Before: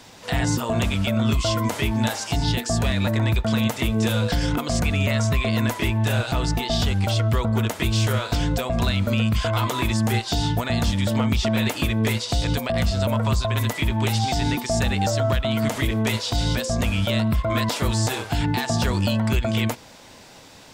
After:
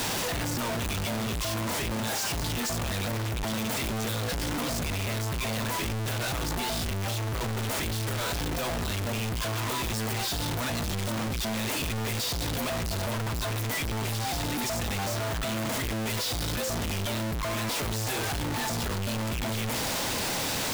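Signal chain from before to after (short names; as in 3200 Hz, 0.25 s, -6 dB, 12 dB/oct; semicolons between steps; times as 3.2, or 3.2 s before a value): infinite clipping; gain -8 dB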